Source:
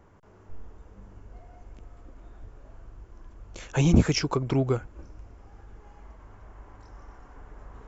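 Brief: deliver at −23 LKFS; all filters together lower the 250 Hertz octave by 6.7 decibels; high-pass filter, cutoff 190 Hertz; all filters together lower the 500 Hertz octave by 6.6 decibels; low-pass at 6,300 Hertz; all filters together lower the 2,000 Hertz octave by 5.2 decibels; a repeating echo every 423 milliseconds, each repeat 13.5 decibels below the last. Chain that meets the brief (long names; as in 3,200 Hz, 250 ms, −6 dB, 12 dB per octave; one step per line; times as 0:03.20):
high-pass filter 190 Hz
low-pass filter 6,300 Hz
parametric band 250 Hz −4.5 dB
parametric band 500 Hz −6.5 dB
parametric band 2,000 Hz −6.5 dB
repeating echo 423 ms, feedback 21%, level −13.5 dB
level +9 dB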